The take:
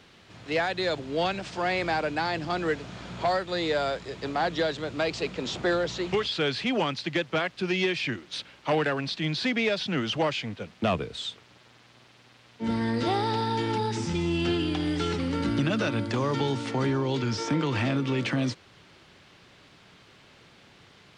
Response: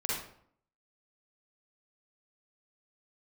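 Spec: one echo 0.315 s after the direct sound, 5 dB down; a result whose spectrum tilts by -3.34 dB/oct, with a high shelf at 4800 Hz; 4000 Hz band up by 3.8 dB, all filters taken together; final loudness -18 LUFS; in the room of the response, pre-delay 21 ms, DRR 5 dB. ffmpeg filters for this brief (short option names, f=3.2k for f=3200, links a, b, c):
-filter_complex "[0:a]equalizer=f=4k:t=o:g=7.5,highshelf=f=4.8k:g=-6.5,aecho=1:1:315:0.562,asplit=2[a][b];[1:a]atrim=start_sample=2205,adelay=21[c];[b][c]afir=irnorm=-1:irlink=0,volume=-11dB[d];[a][d]amix=inputs=2:normalize=0,volume=7.5dB"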